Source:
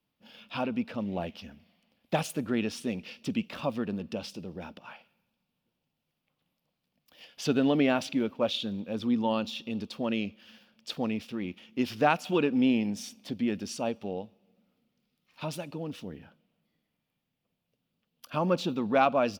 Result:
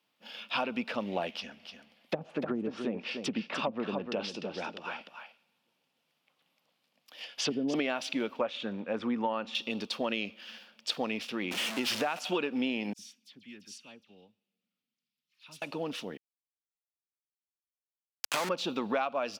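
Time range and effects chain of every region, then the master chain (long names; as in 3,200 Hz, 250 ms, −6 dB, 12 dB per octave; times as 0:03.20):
0:01.33–0:07.74: treble cut that deepens with the level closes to 310 Hz, closed at −24 dBFS + single-tap delay 299 ms −8 dB
0:08.41–0:09.55: low-pass filter 9,300 Hz 24 dB per octave + high shelf with overshoot 2,700 Hz −11.5 dB, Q 1.5
0:11.51–0:12.19: converter with a step at zero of −34 dBFS + downward compressor 2 to 1, threshold −28 dBFS
0:12.93–0:15.62: guitar amp tone stack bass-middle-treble 6-0-2 + all-pass dispersion lows, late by 58 ms, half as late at 2,600 Hz
0:16.17–0:18.49: downward compressor 2 to 1, threshold −34 dBFS + high-pass filter 220 Hz 6 dB per octave + log-companded quantiser 2 bits
whole clip: meter weighting curve A; downward compressor 12 to 1, threshold −34 dBFS; level +7 dB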